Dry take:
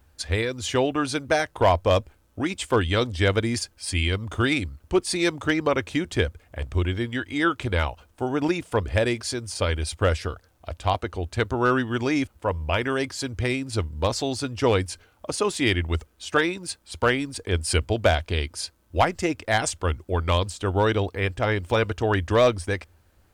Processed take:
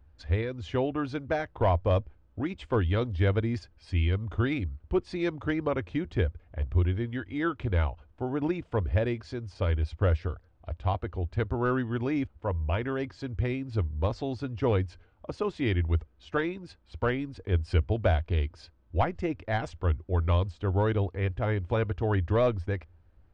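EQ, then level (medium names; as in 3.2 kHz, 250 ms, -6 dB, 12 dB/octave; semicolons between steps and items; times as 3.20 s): tape spacing loss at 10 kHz 43 dB; bass shelf 87 Hz +10 dB; treble shelf 3.1 kHz +8.5 dB; -4.5 dB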